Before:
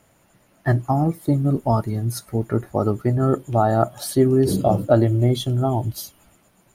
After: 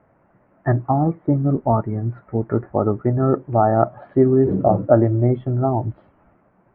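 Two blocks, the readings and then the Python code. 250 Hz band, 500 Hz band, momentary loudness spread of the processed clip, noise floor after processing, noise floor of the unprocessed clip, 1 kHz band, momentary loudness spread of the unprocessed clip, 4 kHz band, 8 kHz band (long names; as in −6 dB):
+1.5 dB, +2.5 dB, 9 LU, −59 dBFS, −59 dBFS, +2.5 dB, 8 LU, below −30 dB, below −40 dB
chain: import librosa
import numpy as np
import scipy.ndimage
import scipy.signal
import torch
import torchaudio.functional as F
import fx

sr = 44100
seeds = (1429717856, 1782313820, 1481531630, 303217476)

y = scipy.signal.sosfilt(scipy.signal.bessel(8, 1100.0, 'lowpass', norm='mag', fs=sr, output='sos'), x)
y = fx.tilt_eq(y, sr, slope=1.5)
y = y * librosa.db_to_amplitude(4.5)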